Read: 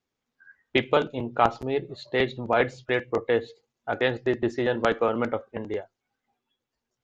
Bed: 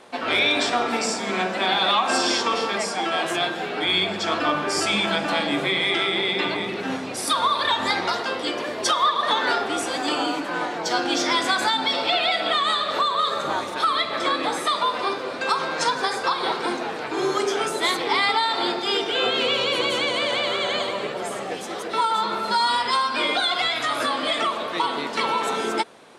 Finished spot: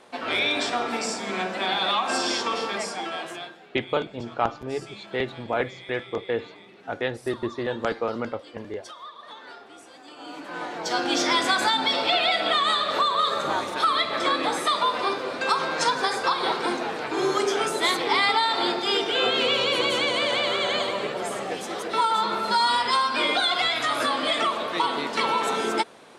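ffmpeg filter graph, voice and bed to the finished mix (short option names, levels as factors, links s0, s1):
-filter_complex "[0:a]adelay=3000,volume=0.668[s0];[1:a]volume=7.08,afade=t=out:st=2.8:d=0.8:silence=0.133352,afade=t=in:st=10.16:d=1.03:silence=0.0891251[s1];[s0][s1]amix=inputs=2:normalize=0"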